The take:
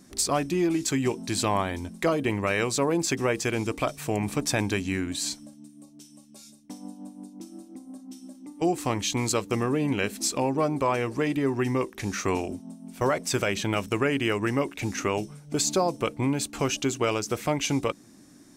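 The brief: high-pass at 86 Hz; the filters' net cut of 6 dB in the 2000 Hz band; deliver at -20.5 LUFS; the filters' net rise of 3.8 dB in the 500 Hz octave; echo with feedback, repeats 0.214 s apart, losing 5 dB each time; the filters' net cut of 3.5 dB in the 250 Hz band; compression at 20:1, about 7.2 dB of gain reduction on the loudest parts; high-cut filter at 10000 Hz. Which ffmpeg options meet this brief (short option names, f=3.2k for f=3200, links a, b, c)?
-af "highpass=86,lowpass=10k,equalizer=f=250:t=o:g=-8,equalizer=f=500:t=o:g=7.5,equalizer=f=2k:t=o:g=-8,acompressor=threshold=-24dB:ratio=20,aecho=1:1:214|428|642|856|1070|1284|1498:0.562|0.315|0.176|0.0988|0.0553|0.031|0.0173,volume=8.5dB"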